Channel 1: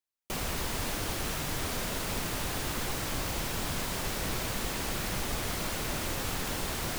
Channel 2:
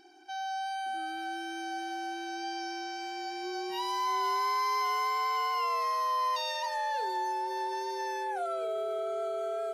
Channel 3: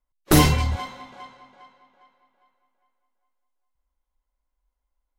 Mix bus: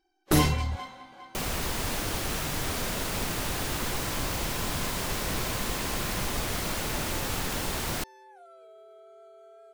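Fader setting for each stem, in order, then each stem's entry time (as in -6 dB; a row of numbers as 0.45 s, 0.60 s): +2.5 dB, -18.5 dB, -6.5 dB; 1.05 s, 0.00 s, 0.00 s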